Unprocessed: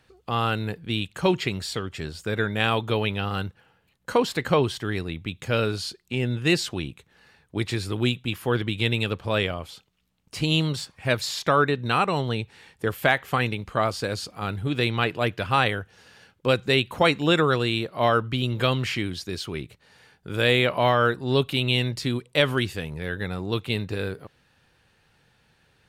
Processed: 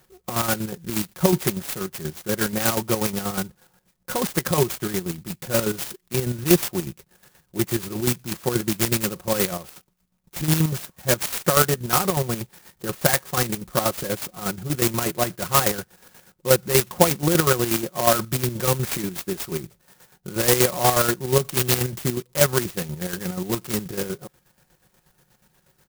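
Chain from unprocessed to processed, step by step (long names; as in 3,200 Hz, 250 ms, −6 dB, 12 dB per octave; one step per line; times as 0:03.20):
comb filter 5.5 ms, depth 72%
square-wave tremolo 8.3 Hz, depth 60%, duty 45%
converter with an unsteady clock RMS 0.11 ms
level +3 dB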